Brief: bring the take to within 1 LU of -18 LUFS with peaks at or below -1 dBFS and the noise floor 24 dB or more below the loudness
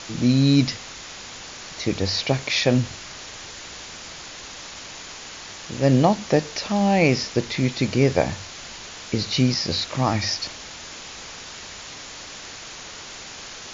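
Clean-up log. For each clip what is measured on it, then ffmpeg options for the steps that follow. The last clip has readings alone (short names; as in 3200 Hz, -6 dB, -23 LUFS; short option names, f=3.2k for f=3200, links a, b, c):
noise floor -39 dBFS; noise floor target -46 dBFS; loudness -21.5 LUFS; peak -5.0 dBFS; loudness target -18.0 LUFS
-> -af "afftdn=nr=7:nf=-39"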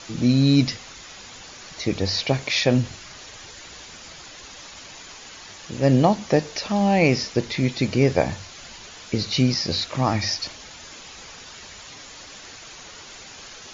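noise floor -42 dBFS; noise floor target -46 dBFS
-> -af "afftdn=nr=6:nf=-42"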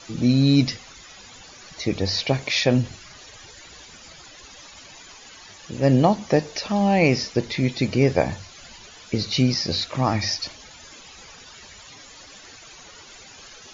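noise floor -45 dBFS; noise floor target -46 dBFS
-> -af "afftdn=nr=6:nf=-45"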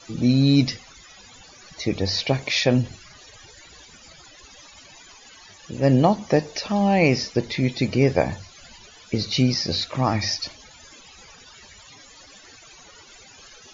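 noise floor -48 dBFS; loudness -21.5 LUFS; peak -5.5 dBFS; loudness target -18.0 LUFS
-> -af "volume=3.5dB"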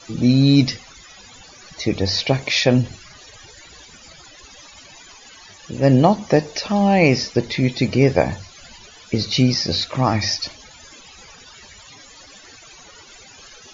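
loudness -18.0 LUFS; peak -2.0 dBFS; noise floor -45 dBFS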